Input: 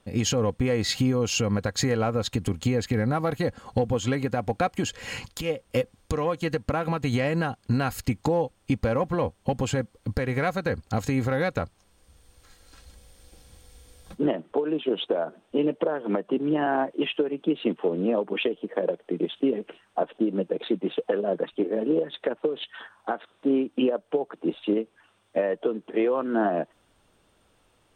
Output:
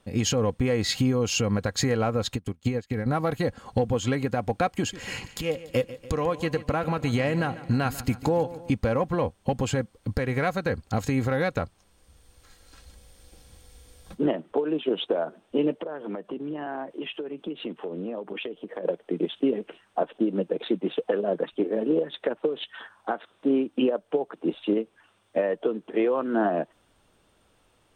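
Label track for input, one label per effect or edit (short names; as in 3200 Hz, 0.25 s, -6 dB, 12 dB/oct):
2.350000	3.060000	upward expander 2.5:1, over -36 dBFS
4.720000	8.710000	feedback echo 0.144 s, feedback 58%, level -16 dB
15.780000	18.850000	compressor 3:1, threshold -32 dBFS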